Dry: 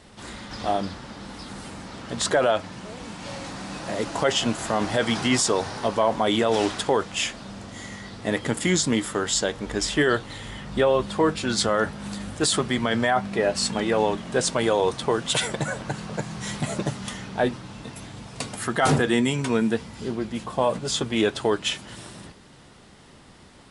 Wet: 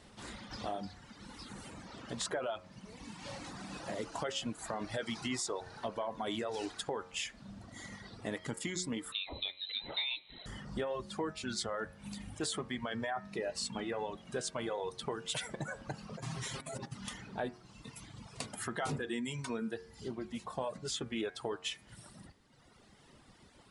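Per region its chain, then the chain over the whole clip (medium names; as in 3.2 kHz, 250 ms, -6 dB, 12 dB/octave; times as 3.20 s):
9.12–10.46 s: peaking EQ 2.6 kHz -6 dB 0.43 oct + frequency inversion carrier 4 kHz
16.17–16.94 s: comb 7.5 ms + compressor with a negative ratio -32 dBFS
whole clip: reverb removal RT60 1.6 s; compression 2.5:1, threshold -30 dBFS; de-hum 90.89 Hz, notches 27; trim -7 dB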